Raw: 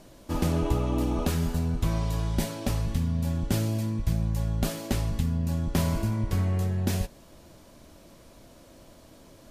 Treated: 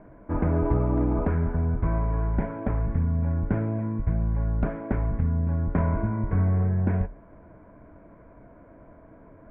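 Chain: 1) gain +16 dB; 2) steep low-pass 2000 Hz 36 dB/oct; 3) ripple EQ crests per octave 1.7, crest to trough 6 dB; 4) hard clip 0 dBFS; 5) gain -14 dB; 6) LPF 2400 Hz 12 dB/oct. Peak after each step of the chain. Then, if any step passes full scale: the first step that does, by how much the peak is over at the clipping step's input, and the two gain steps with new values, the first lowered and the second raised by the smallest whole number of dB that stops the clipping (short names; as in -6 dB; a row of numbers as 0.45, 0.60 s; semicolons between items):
+3.5, +3.0, +3.5, 0.0, -14.0, -14.0 dBFS; step 1, 3.5 dB; step 1 +12 dB, step 5 -10 dB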